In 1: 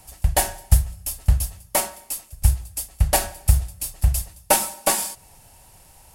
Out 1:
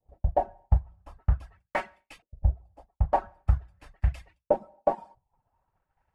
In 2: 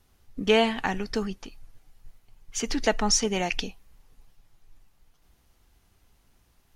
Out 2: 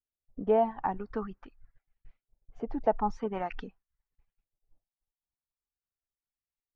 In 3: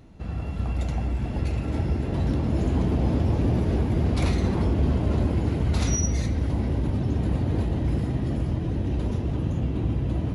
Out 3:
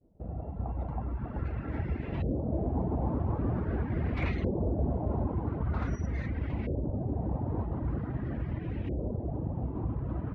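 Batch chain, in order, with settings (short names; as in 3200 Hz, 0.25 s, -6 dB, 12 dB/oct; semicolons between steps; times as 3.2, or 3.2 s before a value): LFO low-pass saw up 0.45 Hz 510–2500 Hz; reverb removal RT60 0.6 s; expander -41 dBFS; gain -6.5 dB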